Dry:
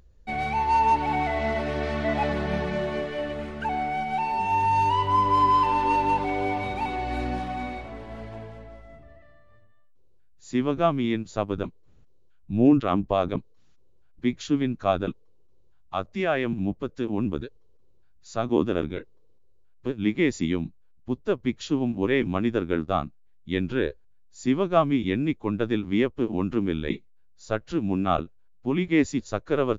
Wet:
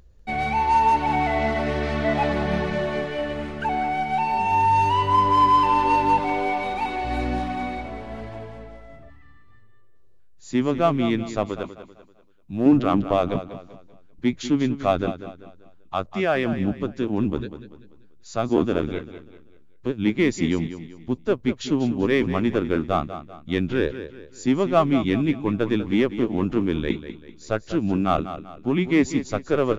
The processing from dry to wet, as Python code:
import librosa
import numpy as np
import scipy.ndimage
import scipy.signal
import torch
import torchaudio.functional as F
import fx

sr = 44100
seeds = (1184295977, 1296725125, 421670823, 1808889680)

p1 = np.clip(x, -10.0 ** (-19.0 / 20.0), 10.0 ** (-19.0 / 20.0))
p2 = x + (p1 * 10.0 ** (-7.0 / 20.0))
p3 = fx.peak_eq(p2, sr, hz=97.0, db=-13.5, octaves=1.5, at=(6.2, 7.05))
p4 = p3 + fx.echo_feedback(p3, sr, ms=194, feedback_pct=38, wet_db=-12.0, dry=0)
p5 = fx.spec_repair(p4, sr, seeds[0], start_s=9.12, length_s=0.94, low_hz=320.0, high_hz=700.0, source='after')
y = fx.low_shelf(p5, sr, hz=310.0, db=-9.0, at=(11.49, 12.66))